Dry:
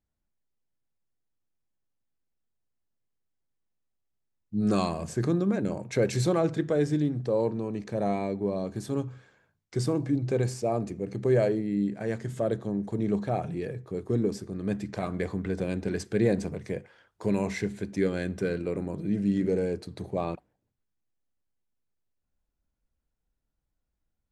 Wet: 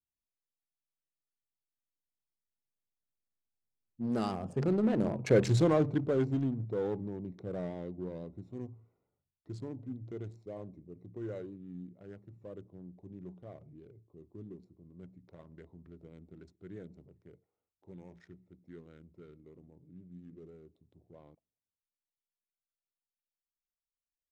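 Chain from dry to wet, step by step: Wiener smoothing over 25 samples; Doppler pass-by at 5.34, 41 m/s, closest 20 m; vibrato 6.1 Hz 36 cents; in parallel at -5 dB: hard clip -37.5 dBFS, distortion -2 dB; on the sum: high shelf 9000 Hz -8.5 dB

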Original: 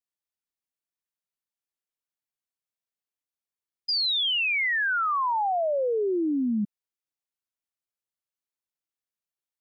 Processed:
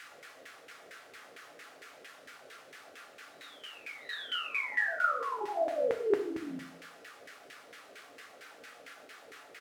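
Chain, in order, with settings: early reflections 13 ms -4 dB, 42 ms -5 dB, 78 ms -3 dB; ring modulator 21 Hz; monotone LPC vocoder at 8 kHz 170 Hz; requantised 6-bit, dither triangular; bell 940 Hz -14 dB 0.41 oct; reverse echo 0.691 s -12 dB; LFO band-pass saw down 4.4 Hz 420–1900 Hz; HPF 63 Hz; reverb RT60 0.75 s, pre-delay 4 ms, DRR 6 dB

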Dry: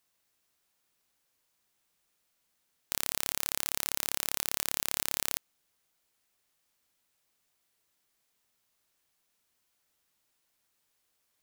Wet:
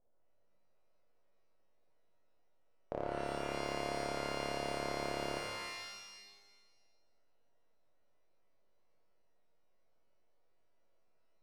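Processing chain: full-wave rectifier; synth low-pass 590 Hz, resonance Q 3.6; resonator 350 Hz, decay 0.76 s, mix 50%; shimmer reverb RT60 1.3 s, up +12 st, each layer -2 dB, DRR 3 dB; gain +8.5 dB

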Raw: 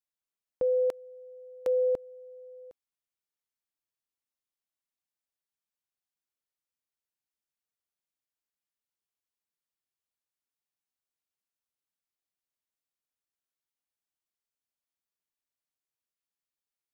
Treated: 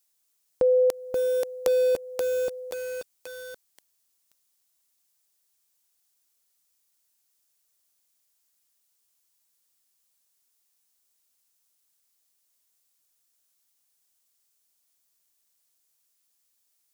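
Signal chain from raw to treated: tone controls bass -3 dB, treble +12 dB; in parallel at 0 dB: compressor 16:1, threshold -36 dBFS, peak gain reduction 12.5 dB; on the sum: lo-fi delay 0.531 s, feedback 55%, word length 7-bit, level -3.5 dB; gain +4 dB

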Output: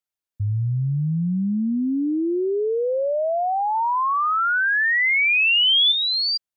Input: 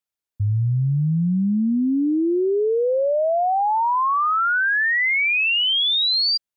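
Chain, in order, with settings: 3.75–5.92 high shelf 3400 Hz +11.5 dB; gain -2.5 dB

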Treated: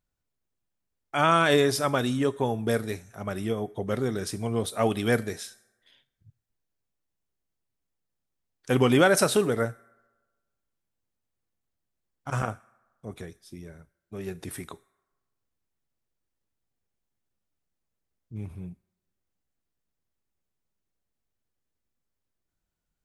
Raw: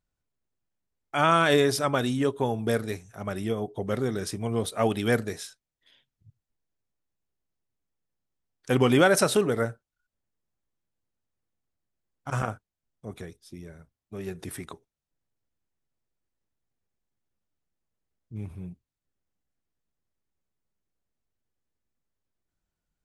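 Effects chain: on a send: pre-emphasis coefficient 0.97 + reverb RT60 1.3 s, pre-delay 4 ms, DRR 19.5 dB

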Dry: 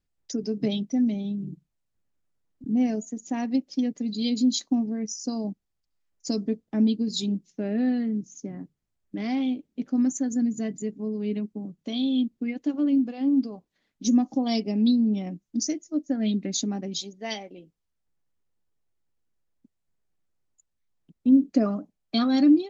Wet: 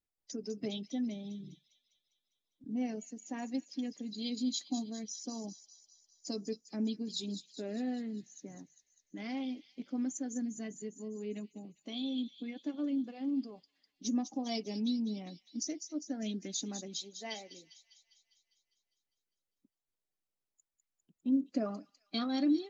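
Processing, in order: bin magnitudes rounded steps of 15 dB; low shelf 200 Hz -10 dB; thin delay 0.201 s, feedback 60%, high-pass 4400 Hz, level -6.5 dB; gain -8 dB

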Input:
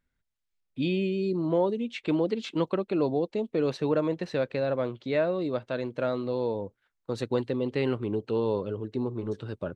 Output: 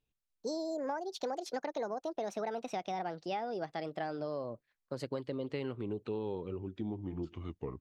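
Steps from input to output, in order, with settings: speed glide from 177% -> 73%; compressor, threshold -27 dBFS, peak gain reduction 7.5 dB; gain -6 dB

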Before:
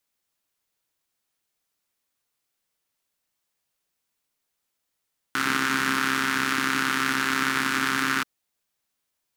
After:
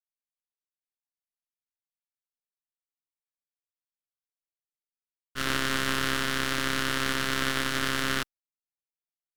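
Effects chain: expander -22 dBFS; half-wave rectifier

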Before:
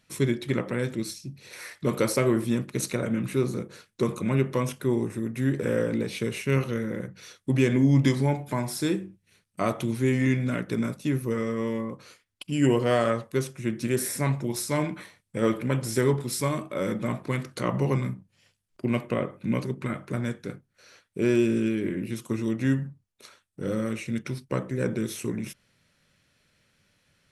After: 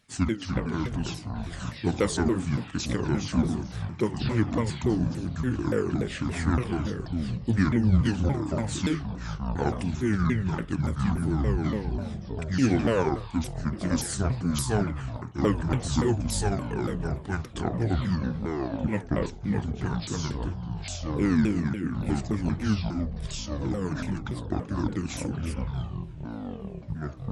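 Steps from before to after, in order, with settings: repeated pitch sweeps -9.5 st, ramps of 0.286 s; echoes that change speed 0.252 s, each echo -6 st, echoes 3, each echo -6 dB

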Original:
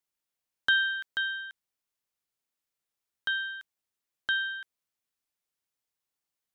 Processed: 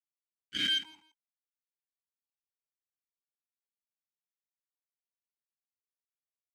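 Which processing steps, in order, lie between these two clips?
spectral swells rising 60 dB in 3.00 s; spectral noise reduction 28 dB; added harmonics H 2 -24 dB, 3 -23 dB, 7 -15 dB, 8 -42 dB, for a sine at -13.5 dBFS; fuzz box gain 41 dB, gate -44 dBFS; on a send: feedback echo 0.166 s, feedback 21%, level -15 dB; on the sum: vowel sequencer 2.4 Hz; gain +2.5 dB

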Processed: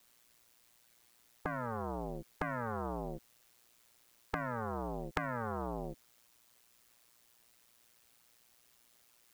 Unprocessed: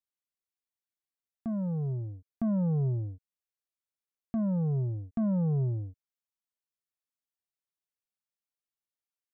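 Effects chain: ring modulator 59 Hz; spectral compressor 10:1; gain +13 dB

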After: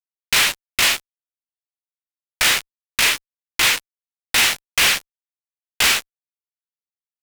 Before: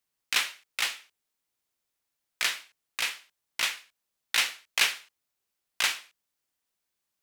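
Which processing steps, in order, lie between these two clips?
fuzz box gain 44 dB, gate -42 dBFS

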